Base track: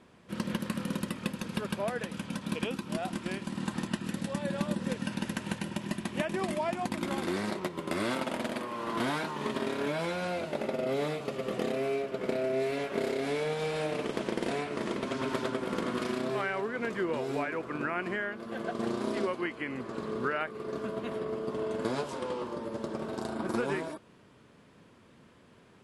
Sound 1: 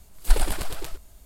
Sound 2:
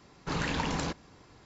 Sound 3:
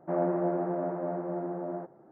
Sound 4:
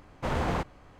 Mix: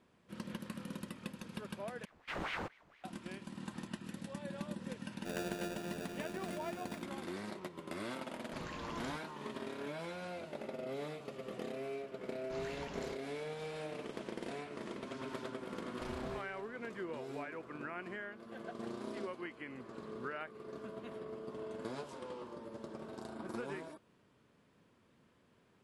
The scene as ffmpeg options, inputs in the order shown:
-filter_complex "[4:a]asplit=2[a][b];[2:a]asplit=2[c][d];[0:a]volume=-11dB[e];[a]aeval=exprs='val(0)*sin(2*PI*1200*n/s+1200*0.9/4.3*sin(2*PI*4.3*n/s))':c=same[f];[3:a]acrusher=samples=42:mix=1:aa=0.000001[g];[e]asplit=2[h][i];[h]atrim=end=2.054[j];[f]atrim=end=0.99,asetpts=PTS-STARTPTS,volume=-9dB[k];[i]atrim=start=3.036[l];[g]atrim=end=2.11,asetpts=PTS-STARTPTS,volume=-13.5dB,afade=t=in:d=0.004:c=hsin,afade=t=out:st=2.106:d=0.004:c=hsin,adelay=227997S[m];[c]atrim=end=1.45,asetpts=PTS-STARTPTS,volume=-15.5dB,afade=t=in:d=0.004:c=hsin,afade=t=out:st=1.446:d=0.004:c=hsin,adelay=8250[n];[d]atrim=end=1.45,asetpts=PTS-STARTPTS,volume=-16dB,afade=t=in:d=0.004:c=hsin,afade=t=out:st=1.446:d=0.004:c=hsin,adelay=12230[o];[b]atrim=end=0.99,asetpts=PTS-STARTPTS,volume=-17.5dB,afade=t=in:d=0.004:c=hsin,afade=t=out:st=0.986:d=0.004:c=hsin,adelay=15760[p];[j][k]acrossfade=d=0.004:c1=hsin:c2=hsin[q];[q][l]acrossfade=d=0.004:c1=hsin:c2=hsin[r];[r][m][n][o][p]amix=inputs=5:normalize=0"

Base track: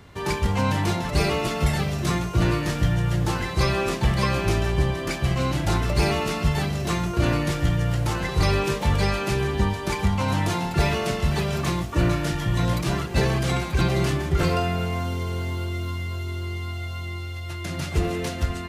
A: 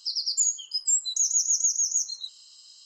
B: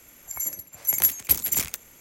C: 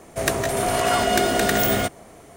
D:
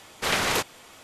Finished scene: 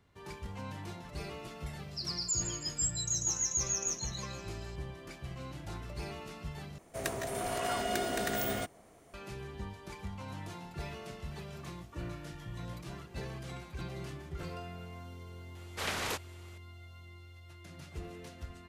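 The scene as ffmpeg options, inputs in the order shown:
-filter_complex "[0:a]volume=-20dB[a];[1:a]aecho=1:1:160|320|480|640|800:0.398|0.171|0.0736|0.0317|0.0136[b];[a]asplit=2[c][d];[c]atrim=end=6.784[e];[3:a]atrim=end=2.36,asetpts=PTS-STARTPTS,volume=-13.5dB[f];[d]atrim=start=9.136[g];[b]atrim=end=2.85,asetpts=PTS-STARTPTS,volume=-9.5dB,afade=t=in:d=0.004:c=hsin,afade=t=out:st=2.846:d=0.004:c=hsin,adelay=1910[h];[4:a]atrim=end=1.03,asetpts=PTS-STARTPTS,volume=-11dB,afade=t=in:d=0.004:c=hsin,afade=t=out:st=1.026:d=0.004:c=hsin,adelay=15550[i];[e][f]acrossfade=d=0.004:c1=hsin:c2=hsin[j];[j][g]acrossfade=d=0.004:c1=hsin:c2=hsin[k];[k][h][i]amix=inputs=3:normalize=0"

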